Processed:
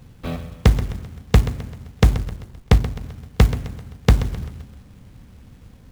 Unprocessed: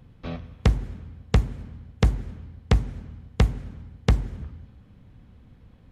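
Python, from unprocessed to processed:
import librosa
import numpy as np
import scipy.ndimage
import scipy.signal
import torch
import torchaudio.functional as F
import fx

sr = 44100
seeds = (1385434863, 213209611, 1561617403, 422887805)

y = fx.backlash(x, sr, play_db=-36.0, at=(2.14, 3.03))
y = fx.echo_feedback(y, sr, ms=130, feedback_pct=46, wet_db=-13)
y = fx.quant_companded(y, sr, bits=6)
y = y * librosa.db_to_amplitude(5.5)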